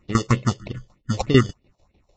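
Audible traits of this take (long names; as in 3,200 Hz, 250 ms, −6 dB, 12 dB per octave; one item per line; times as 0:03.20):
aliases and images of a low sample rate 1,600 Hz, jitter 0%
tremolo saw down 6.7 Hz, depth 85%
phaser sweep stages 4, 3.2 Hz, lowest notch 220–1,400 Hz
Ogg Vorbis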